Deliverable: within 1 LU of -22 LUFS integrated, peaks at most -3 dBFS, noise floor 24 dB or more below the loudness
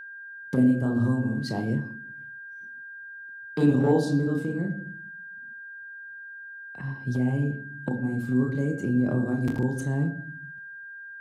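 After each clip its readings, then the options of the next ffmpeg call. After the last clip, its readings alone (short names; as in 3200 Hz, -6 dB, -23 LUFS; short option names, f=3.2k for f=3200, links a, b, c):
steady tone 1600 Hz; tone level -39 dBFS; loudness -26.5 LUFS; peak -11.0 dBFS; loudness target -22.0 LUFS
-> -af "bandreject=f=1.6k:w=30"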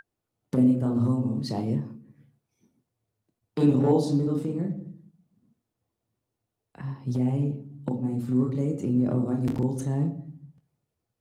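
steady tone none; loudness -26.5 LUFS; peak -11.0 dBFS; loudness target -22.0 LUFS
-> -af "volume=4.5dB"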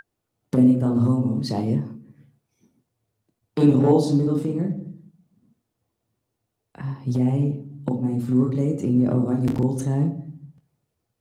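loudness -22.0 LUFS; peak -6.5 dBFS; noise floor -80 dBFS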